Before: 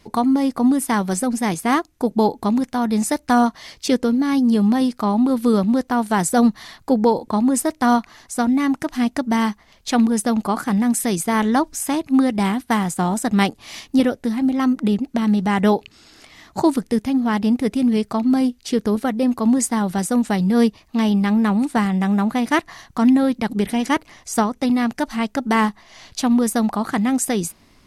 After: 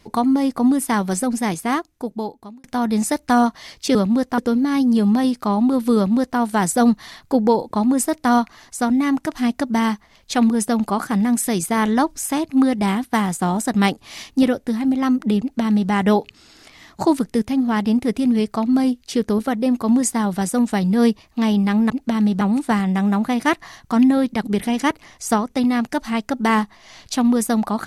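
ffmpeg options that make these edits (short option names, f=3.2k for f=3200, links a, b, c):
-filter_complex "[0:a]asplit=6[a][b][c][d][e][f];[a]atrim=end=2.64,asetpts=PTS-STARTPTS,afade=t=out:st=1.38:d=1.26[g];[b]atrim=start=2.64:end=3.952,asetpts=PTS-STARTPTS,afade=t=in:d=0.004:c=hsin[h];[c]atrim=start=5.528:end=5.962[i];[d]atrim=start=3.948:end=21.472[j];[e]atrim=start=14.968:end=15.482[k];[f]atrim=start=21.468[l];[g][h]concat=n=2:v=0:a=1[m];[m][i]acrossfade=d=0.004:c1=hsin:c2=hsin[n];[n][j]acrossfade=d=0.004:c1=hsin:c2=hsin[o];[o][k]acrossfade=d=0.004:c1=hsin:c2=hsin[p];[p][l]acrossfade=d=0.004:c1=hsin:c2=hsin"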